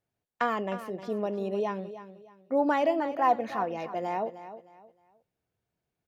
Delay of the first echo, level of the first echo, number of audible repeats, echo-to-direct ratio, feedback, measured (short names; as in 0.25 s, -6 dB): 0.309 s, -13.0 dB, 3, -12.5 dB, 29%